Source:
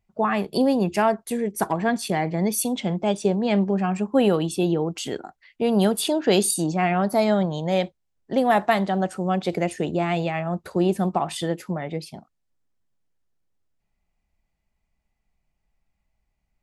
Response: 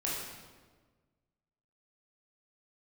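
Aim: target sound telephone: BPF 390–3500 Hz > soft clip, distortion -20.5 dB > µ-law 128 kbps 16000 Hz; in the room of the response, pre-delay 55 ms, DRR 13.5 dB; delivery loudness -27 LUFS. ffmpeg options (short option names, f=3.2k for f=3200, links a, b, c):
-filter_complex "[0:a]asplit=2[a][b];[1:a]atrim=start_sample=2205,adelay=55[c];[b][c]afir=irnorm=-1:irlink=0,volume=-18.5dB[d];[a][d]amix=inputs=2:normalize=0,highpass=390,lowpass=3.5k,asoftclip=threshold=-13dB,volume=0.5dB" -ar 16000 -c:a pcm_mulaw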